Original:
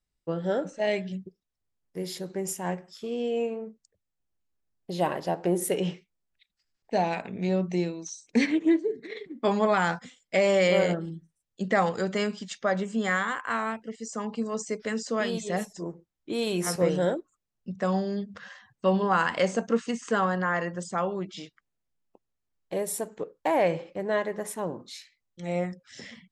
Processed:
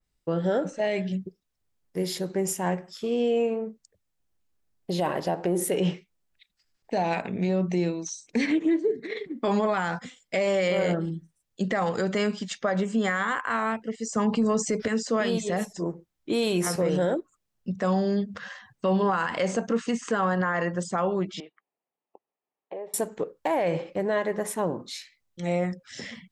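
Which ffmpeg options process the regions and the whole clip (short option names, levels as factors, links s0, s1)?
-filter_complex "[0:a]asettb=1/sr,asplit=3[s0][s1][s2];[s0]atrim=end=14.164[s3];[s1]atrim=start=14.16:end=14.88,asetpts=PTS-STARTPTS,afade=t=in:d=0.004:c=qsin,afade=t=out:st=0.716:d=0.004:c=qsin,equalizer=f=95:w=0.74:g=8.5,acontrast=77[s4];[s2]atrim=start=14.876[s5];[s3][s4]acrossfade=d=0.004:c1=hsin:c2=qsin[s6];[s6][s5]acrossfade=d=0.004:c1=qsin:c2=hsin,asettb=1/sr,asplit=3[s7][s8][s9];[s7]atrim=end=21.404[s10];[s8]atrim=start=21.4:end=22.94,asetpts=PTS-STARTPTS,afade=t=in:d=0.004:c=qsin,afade=t=out:st=1.536:d=0.004:c=qsin,acompressor=threshold=0.0126:ratio=6:attack=3.2:release=140:knee=1:detection=peak,highpass=400,equalizer=f=410:t=q:w=4:g=3,equalizer=f=800:t=q:w=4:g=5,equalizer=f=1500:t=q:w=4:g=-10,equalizer=f=2100:t=q:w=4:g=-4,lowpass=f=2400:w=0.5412,lowpass=f=2400:w=1.3066[s11];[s9]atrim=start=22.936[s12];[s10][s11]acrossfade=d=0.004:c1=hsin:c2=qsin[s13];[s13][s12]acrossfade=d=0.004:c1=qsin:c2=hsin,acontrast=37,alimiter=limit=0.15:level=0:latency=1:release=63,adynamicequalizer=threshold=0.00562:dfrequency=2900:dqfactor=0.7:tfrequency=2900:tqfactor=0.7:attack=5:release=100:ratio=0.375:range=1.5:mode=cutabove:tftype=highshelf"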